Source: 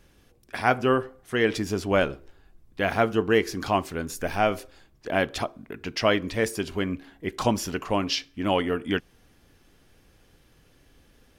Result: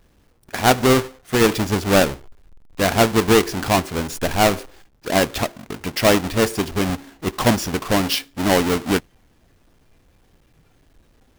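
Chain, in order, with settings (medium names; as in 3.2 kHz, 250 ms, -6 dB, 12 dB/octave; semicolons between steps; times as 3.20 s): square wave that keeps the level; spectral noise reduction 6 dB; trim +2.5 dB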